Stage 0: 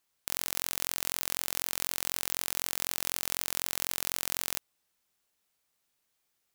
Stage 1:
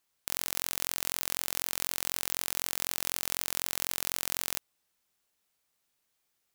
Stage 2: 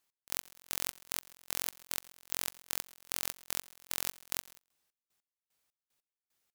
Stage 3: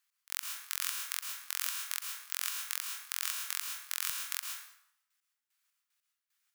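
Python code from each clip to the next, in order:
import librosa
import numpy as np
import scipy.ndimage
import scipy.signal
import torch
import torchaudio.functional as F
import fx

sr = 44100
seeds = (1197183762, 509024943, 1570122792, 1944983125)

y1 = x
y2 = fx.step_gate(y1, sr, bpm=150, pattern='x..x...x', floor_db=-24.0, edge_ms=4.5)
y2 = y2 + 10.0 ** (-24.0 / 20.0) * np.pad(y2, (int(131 * sr / 1000.0), 0))[:len(y2)]
y2 = F.gain(torch.from_numpy(y2), -1.5).numpy()
y3 = fx.ladder_highpass(y2, sr, hz=1100.0, resonance_pct=30)
y3 = fx.rev_plate(y3, sr, seeds[0], rt60_s=0.75, hf_ratio=0.75, predelay_ms=100, drr_db=1.5)
y3 = F.gain(torch.from_numpy(y3), 6.5).numpy()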